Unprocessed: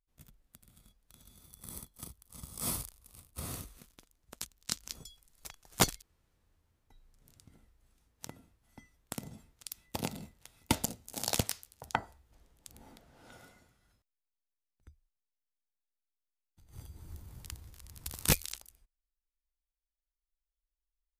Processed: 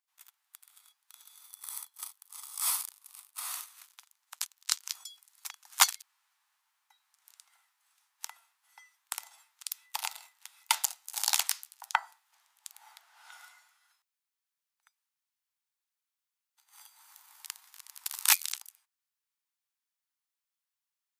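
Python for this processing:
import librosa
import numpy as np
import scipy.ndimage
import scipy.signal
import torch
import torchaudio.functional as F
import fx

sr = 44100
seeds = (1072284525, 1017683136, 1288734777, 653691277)

y = scipy.signal.sosfilt(scipy.signal.butter(8, 830.0, 'highpass', fs=sr, output='sos'), x)
y = y * librosa.db_to_amplitude(6.0)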